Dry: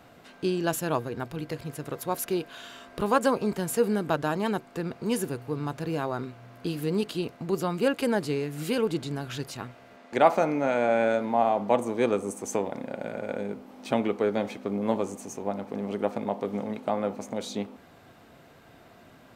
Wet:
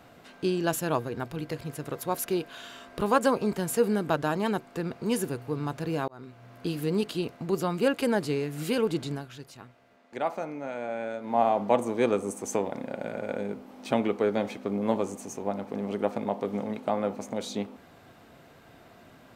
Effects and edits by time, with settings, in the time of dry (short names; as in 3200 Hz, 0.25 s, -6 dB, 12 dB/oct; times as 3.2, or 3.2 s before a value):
6.08–6.73 fade in equal-power
9.12–11.38 dip -10 dB, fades 0.16 s